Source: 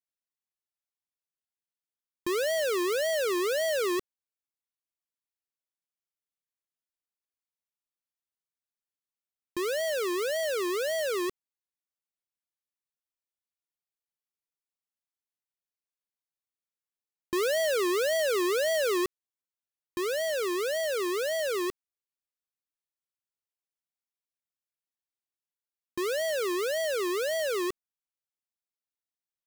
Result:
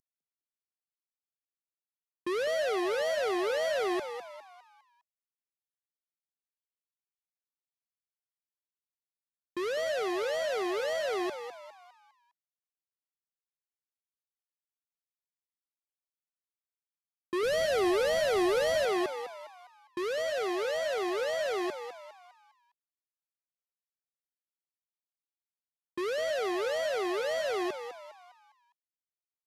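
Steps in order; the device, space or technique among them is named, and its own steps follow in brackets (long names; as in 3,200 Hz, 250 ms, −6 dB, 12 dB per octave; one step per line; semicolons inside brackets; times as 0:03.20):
early wireless headset (high-pass filter 150 Hz 12 dB per octave; variable-slope delta modulation 64 kbit/s)
0:17.43–0:18.85: bass and treble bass +14 dB, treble +5 dB
echo with shifted repeats 203 ms, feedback 42%, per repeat +120 Hz, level −9 dB
level −1.5 dB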